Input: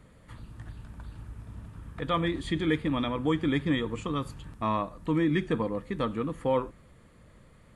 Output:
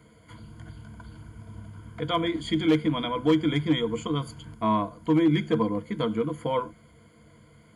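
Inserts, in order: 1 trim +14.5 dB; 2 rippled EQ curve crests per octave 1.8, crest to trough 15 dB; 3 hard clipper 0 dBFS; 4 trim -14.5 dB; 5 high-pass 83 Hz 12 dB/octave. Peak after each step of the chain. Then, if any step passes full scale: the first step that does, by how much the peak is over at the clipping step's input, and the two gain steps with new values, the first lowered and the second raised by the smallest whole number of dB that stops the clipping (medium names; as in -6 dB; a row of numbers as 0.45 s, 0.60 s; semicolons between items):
-0.5 dBFS, +5.5 dBFS, 0.0 dBFS, -14.5 dBFS, -12.0 dBFS; step 2, 5.5 dB; step 1 +8.5 dB, step 4 -8.5 dB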